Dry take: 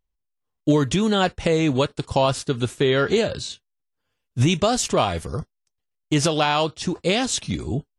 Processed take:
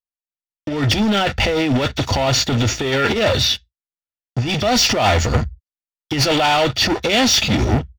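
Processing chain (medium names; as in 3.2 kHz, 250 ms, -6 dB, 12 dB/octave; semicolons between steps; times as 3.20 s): knee-point frequency compression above 3.2 kHz 1.5:1; gate with hold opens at -46 dBFS; compressor with a negative ratio -23 dBFS, ratio -0.5; waveshaping leveller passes 5; reverberation RT60 0.10 s, pre-delay 3 ms, DRR 16.5 dB; trim -8 dB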